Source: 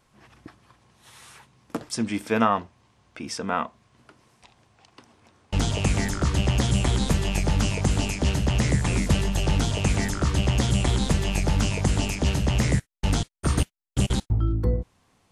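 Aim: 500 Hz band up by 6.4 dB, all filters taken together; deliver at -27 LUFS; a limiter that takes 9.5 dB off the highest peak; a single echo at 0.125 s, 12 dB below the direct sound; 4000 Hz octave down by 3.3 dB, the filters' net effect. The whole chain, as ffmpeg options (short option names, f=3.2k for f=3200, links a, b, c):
-af "equalizer=f=500:t=o:g=8,equalizer=f=4k:t=o:g=-5,alimiter=limit=-12.5dB:level=0:latency=1,aecho=1:1:125:0.251,volume=-2.5dB"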